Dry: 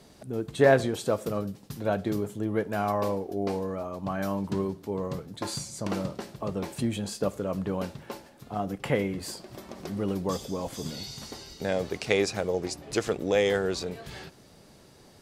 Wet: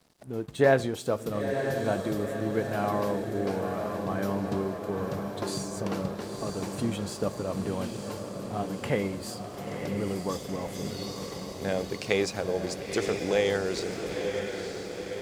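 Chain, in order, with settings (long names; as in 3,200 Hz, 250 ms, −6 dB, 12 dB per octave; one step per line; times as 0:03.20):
feedback delay with all-pass diffusion 952 ms, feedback 63%, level −5.5 dB
dead-zone distortion −52.5 dBFS
level −1.5 dB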